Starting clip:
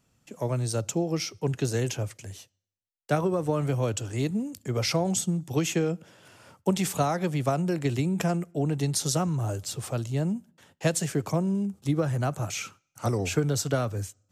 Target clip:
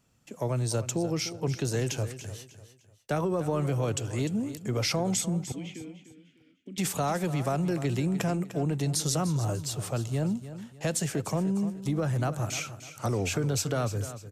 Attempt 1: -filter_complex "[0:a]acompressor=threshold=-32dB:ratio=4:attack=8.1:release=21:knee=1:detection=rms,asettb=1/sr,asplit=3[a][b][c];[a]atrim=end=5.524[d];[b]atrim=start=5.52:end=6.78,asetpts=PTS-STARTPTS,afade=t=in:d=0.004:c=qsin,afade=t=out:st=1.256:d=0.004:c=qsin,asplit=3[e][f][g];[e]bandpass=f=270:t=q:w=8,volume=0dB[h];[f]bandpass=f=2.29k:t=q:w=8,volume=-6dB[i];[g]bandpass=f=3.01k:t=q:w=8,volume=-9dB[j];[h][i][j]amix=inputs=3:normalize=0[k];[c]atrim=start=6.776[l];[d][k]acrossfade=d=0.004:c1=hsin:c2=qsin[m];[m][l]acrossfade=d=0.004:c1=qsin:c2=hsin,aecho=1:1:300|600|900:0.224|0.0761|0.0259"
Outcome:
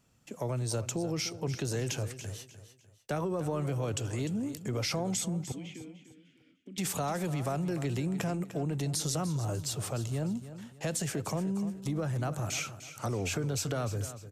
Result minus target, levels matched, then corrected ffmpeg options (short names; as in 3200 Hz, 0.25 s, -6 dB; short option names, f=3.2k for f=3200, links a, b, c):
compressor: peak gain reduction +4.5 dB
-filter_complex "[0:a]acompressor=threshold=-26dB:ratio=4:attack=8.1:release=21:knee=1:detection=rms,asettb=1/sr,asplit=3[a][b][c];[a]atrim=end=5.524[d];[b]atrim=start=5.52:end=6.78,asetpts=PTS-STARTPTS,afade=t=in:d=0.004:c=qsin,afade=t=out:st=1.256:d=0.004:c=qsin,asplit=3[e][f][g];[e]bandpass=f=270:t=q:w=8,volume=0dB[h];[f]bandpass=f=2.29k:t=q:w=8,volume=-6dB[i];[g]bandpass=f=3.01k:t=q:w=8,volume=-9dB[j];[h][i][j]amix=inputs=3:normalize=0[k];[c]atrim=start=6.776[l];[d][k]acrossfade=d=0.004:c1=hsin:c2=qsin[m];[m][l]acrossfade=d=0.004:c1=qsin:c2=hsin,aecho=1:1:300|600|900:0.224|0.0761|0.0259"